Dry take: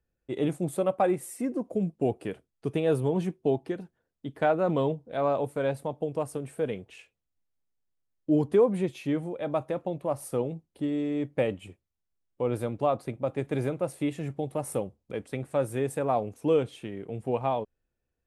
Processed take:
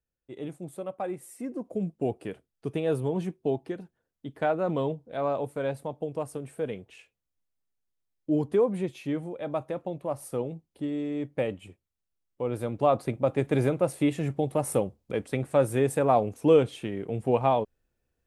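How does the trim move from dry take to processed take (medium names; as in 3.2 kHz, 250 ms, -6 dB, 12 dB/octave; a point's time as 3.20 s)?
0.94 s -9.5 dB
1.82 s -2 dB
12.54 s -2 dB
12.97 s +4.5 dB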